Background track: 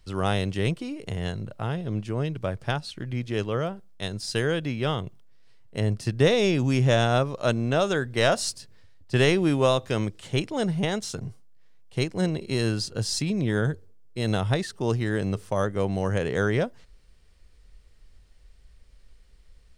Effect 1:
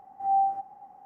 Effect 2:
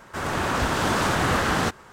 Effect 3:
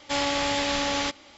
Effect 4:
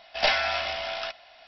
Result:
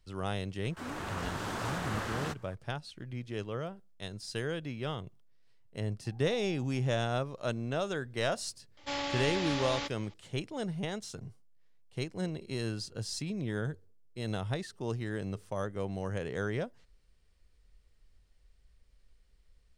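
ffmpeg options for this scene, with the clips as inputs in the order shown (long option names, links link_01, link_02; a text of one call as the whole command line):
ffmpeg -i bed.wav -i cue0.wav -i cue1.wav -i cue2.wav -filter_complex "[0:a]volume=-10dB[link_01];[1:a]acompressor=threshold=-43dB:ratio=6:attack=3.2:release=140:knee=1:detection=peak[link_02];[3:a]lowpass=6300[link_03];[2:a]atrim=end=1.92,asetpts=PTS-STARTPTS,volume=-14dB,afade=type=in:duration=0.004:curve=hsin,afade=type=out:start_time=1.916:duration=0.004:curve=hsin,adelay=630[link_04];[link_02]atrim=end=1.05,asetpts=PTS-STARTPTS,volume=-12dB,afade=type=in:duration=0.004:curve=hsin,afade=type=out:start_time=1.046:duration=0.004:curve=hsin,adelay=6050[link_05];[link_03]atrim=end=1.37,asetpts=PTS-STARTPTS,volume=-9dB,afade=type=in:duration=0.004:curve=hsin,afade=type=out:start_time=1.366:duration=0.004:curve=hsin,adelay=8770[link_06];[link_01][link_04][link_05][link_06]amix=inputs=4:normalize=0" out.wav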